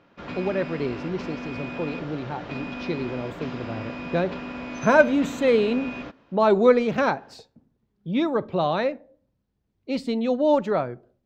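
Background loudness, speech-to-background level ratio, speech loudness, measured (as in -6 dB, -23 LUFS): -35.0 LUFS, 10.5 dB, -24.5 LUFS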